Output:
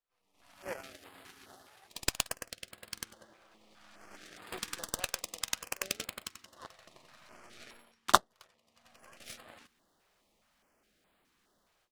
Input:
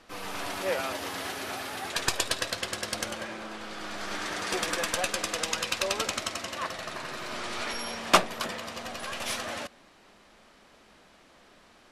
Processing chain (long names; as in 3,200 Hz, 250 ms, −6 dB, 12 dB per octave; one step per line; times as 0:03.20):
converter with a step at zero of −28.5 dBFS
automatic gain control gain up to 8 dB
power curve on the samples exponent 3
echo ahead of the sound 52 ms −17 dB
notch on a step sequencer 4.8 Hz 250–5,900 Hz
level +3 dB